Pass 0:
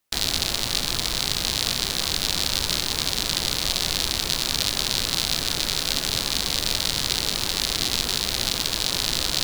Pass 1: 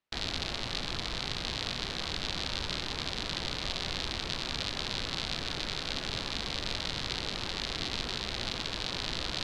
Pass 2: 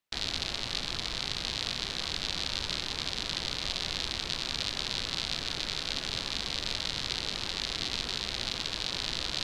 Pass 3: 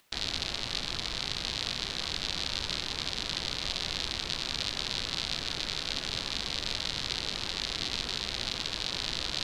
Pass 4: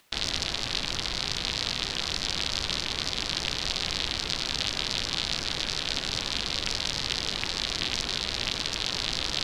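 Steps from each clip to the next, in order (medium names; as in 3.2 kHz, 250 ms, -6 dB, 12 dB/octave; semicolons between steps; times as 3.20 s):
low-pass 3.5 kHz 12 dB/octave; trim -6.5 dB
treble shelf 2.8 kHz +7.5 dB; trim -2.5 dB
upward compressor, threshold -51 dBFS
loudspeaker Doppler distortion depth 0.56 ms; trim +4 dB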